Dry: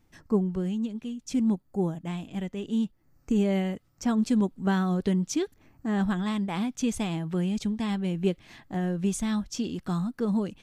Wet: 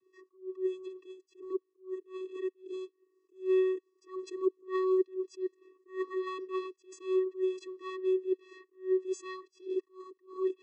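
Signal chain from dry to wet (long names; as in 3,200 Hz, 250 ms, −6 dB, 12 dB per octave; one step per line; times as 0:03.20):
channel vocoder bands 16, square 374 Hz
level that may rise only so fast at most 220 dB per second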